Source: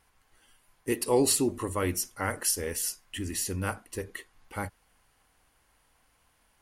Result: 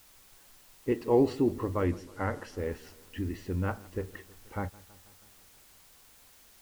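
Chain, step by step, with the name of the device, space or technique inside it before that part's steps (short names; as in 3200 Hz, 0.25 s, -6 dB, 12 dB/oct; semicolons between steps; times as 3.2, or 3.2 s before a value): cassette deck with a dirty head (tape spacing loss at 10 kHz 44 dB; wow and flutter; white noise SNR 25 dB); 1.84–2.58 LPF 12000 Hz 12 dB/oct; warbling echo 0.161 s, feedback 67%, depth 80 cents, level -22.5 dB; gain +2.5 dB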